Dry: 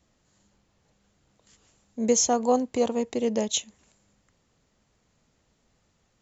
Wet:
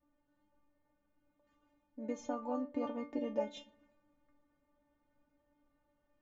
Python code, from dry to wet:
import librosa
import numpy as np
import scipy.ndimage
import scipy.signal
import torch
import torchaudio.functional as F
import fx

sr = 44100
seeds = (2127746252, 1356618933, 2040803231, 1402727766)

y = scipy.signal.sosfilt(scipy.signal.butter(2, 1400.0, 'lowpass', fs=sr, output='sos'), x)
y = fx.rider(y, sr, range_db=10, speed_s=0.5)
y = fx.stiff_resonator(y, sr, f0_hz=290.0, decay_s=0.27, stiffness=0.002)
y = fx.room_shoebox(y, sr, seeds[0], volume_m3=2200.0, walls='furnished', distance_m=0.31)
y = y * librosa.db_to_amplitude(8.5)